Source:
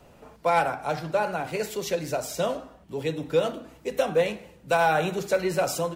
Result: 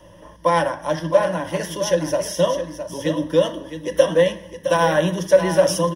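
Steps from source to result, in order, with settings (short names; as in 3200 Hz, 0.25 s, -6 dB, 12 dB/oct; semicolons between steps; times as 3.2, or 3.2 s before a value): ripple EQ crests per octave 1.2, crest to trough 17 dB; echo 0.663 s -9.5 dB; gain +3 dB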